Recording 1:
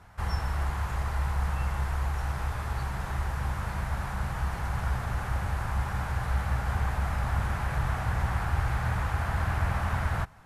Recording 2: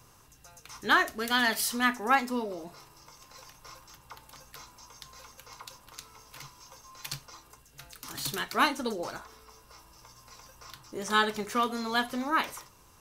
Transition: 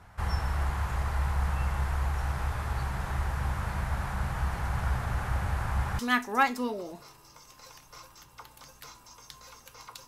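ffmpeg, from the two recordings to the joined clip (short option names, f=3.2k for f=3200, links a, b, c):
-filter_complex "[0:a]apad=whole_dur=10.07,atrim=end=10.07,atrim=end=5.992[a];[1:a]atrim=start=1.708:end=5.79[b];[a][b]acrossfade=d=0.004:c1=hsin:c2=hsin"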